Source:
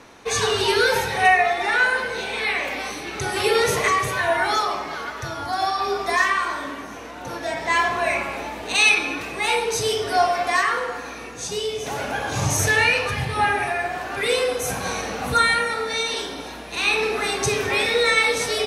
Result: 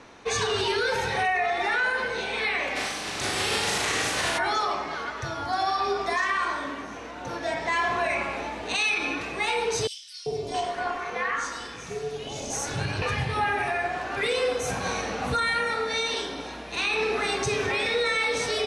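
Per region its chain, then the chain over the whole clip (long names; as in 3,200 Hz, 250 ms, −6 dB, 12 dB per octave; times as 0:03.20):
0:02.75–0:04.37: compressing power law on the bin magnitudes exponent 0.36 + flutter between parallel walls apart 6.7 metres, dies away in 0.6 s
0:09.87–0:13.02: three-band delay without the direct sound highs, lows, mids 390/670 ms, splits 780/3,400 Hz + amplitude modulation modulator 290 Hz, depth 40%
whole clip: Bessel low-pass filter 6,900 Hz, order 8; brickwall limiter −15 dBFS; level −2 dB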